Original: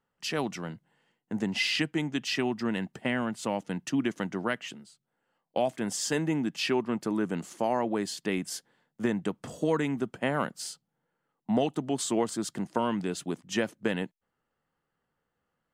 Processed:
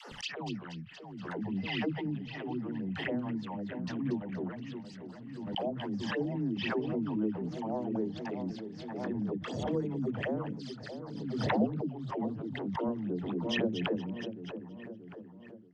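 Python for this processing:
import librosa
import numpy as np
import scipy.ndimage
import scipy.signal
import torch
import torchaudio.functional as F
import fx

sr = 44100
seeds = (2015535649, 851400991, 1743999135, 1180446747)

y = fx.env_lowpass_down(x, sr, base_hz=670.0, full_db=-27.5)
y = scipy.signal.sosfilt(scipy.signal.butter(2, 6600.0, 'lowpass', fs=sr, output='sos'), y)
y = fx.peak_eq(y, sr, hz=3300.0, db=8.5, octaves=1.9)
y = fx.dispersion(y, sr, late='lows', ms=120.0, hz=330.0)
y = fx.phaser_stages(y, sr, stages=12, low_hz=410.0, high_hz=3300.0, hz=3.9, feedback_pct=45)
y = fx.echo_split(y, sr, split_hz=2100.0, low_ms=631, high_ms=236, feedback_pct=52, wet_db=-9.5)
y = fx.pre_swell(y, sr, db_per_s=34.0)
y = y * librosa.db_to_amplitude(-5.0)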